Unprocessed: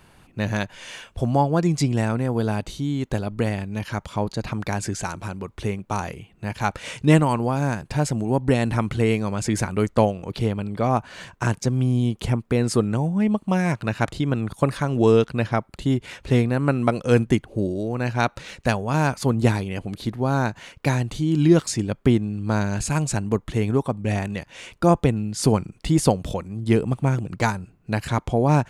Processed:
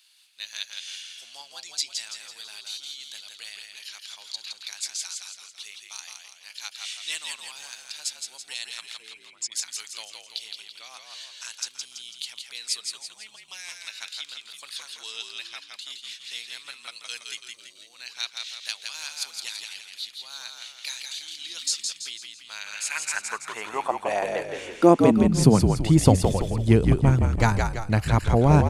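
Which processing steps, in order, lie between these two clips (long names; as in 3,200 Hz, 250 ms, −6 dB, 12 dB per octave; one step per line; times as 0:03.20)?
0:08.97–0:09.52: spectral envelope exaggerated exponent 2
high-pass filter sweep 3,900 Hz → 79 Hz, 0:22.29–0:26.18
echo with shifted repeats 166 ms, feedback 46%, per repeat −54 Hz, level −4.5 dB
level −1 dB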